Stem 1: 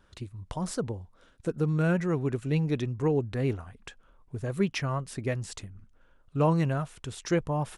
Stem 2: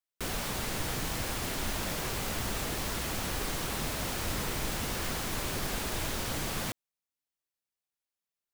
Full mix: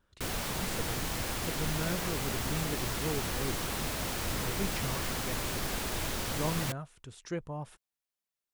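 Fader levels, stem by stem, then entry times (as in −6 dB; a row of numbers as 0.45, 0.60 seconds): −10.0, −0.5 decibels; 0.00, 0.00 seconds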